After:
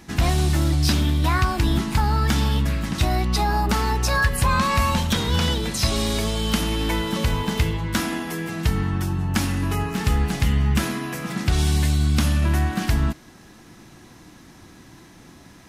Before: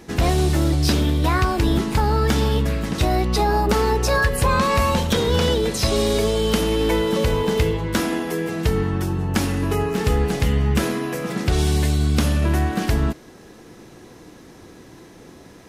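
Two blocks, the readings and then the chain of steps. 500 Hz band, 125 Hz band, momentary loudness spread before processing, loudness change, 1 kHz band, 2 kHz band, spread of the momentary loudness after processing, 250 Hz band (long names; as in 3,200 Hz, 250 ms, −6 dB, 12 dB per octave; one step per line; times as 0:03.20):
−9.0 dB, −0.5 dB, 4 LU, −1.5 dB, −1.5 dB, −0.5 dB, 5 LU, −2.5 dB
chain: parametric band 460 Hz −12 dB 0.78 octaves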